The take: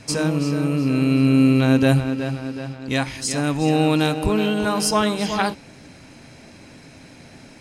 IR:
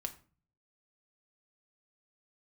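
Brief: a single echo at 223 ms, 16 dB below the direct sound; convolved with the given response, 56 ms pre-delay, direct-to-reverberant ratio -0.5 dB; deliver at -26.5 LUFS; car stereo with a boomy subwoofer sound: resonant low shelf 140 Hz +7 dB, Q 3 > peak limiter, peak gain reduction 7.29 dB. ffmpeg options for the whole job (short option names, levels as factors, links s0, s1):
-filter_complex "[0:a]aecho=1:1:223:0.158,asplit=2[s0][s1];[1:a]atrim=start_sample=2205,adelay=56[s2];[s1][s2]afir=irnorm=-1:irlink=0,volume=1.19[s3];[s0][s3]amix=inputs=2:normalize=0,lowshelf=f=140:t=q:w=3:g=7,volume=0.447,alimiter=limit=0.141:level=0:latency=1"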